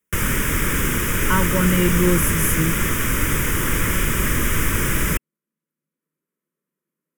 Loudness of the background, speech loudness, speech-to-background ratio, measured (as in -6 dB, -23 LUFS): -20.5 LUFS, -21.0 LUFS, -0.5 dB